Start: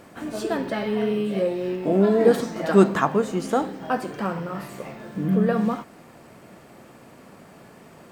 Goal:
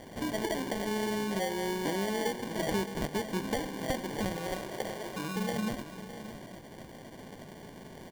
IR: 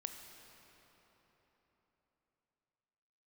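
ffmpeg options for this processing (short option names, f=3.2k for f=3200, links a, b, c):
-filter_complex "[0:a]acompressor=threshold=-29dB:ratio=10,acrusher=samples=34:mix=1:aa=0.000001,asettb=1/sr,asplit=3[a][b][c];[a]atrim=end=4.364[d];[b]atrim=start=4.36:end=5.36,asetpts=PTS-STARTPTS,afade=t=in:d=0.004:c=qsin,afade=t=out:st=0.996:d=0.004:c=qsin,lowshelf=f=300:t=q:w=1.5:g=-7[e];[c]atrim=start=5.356[f];[d][e]acrossfade=d=0.004:c1=hsin:c2=qsin[g];[g][f]acrossfade=d=0.004:c1=qsin:c2=hsin,aecho=1:1:616:0.237"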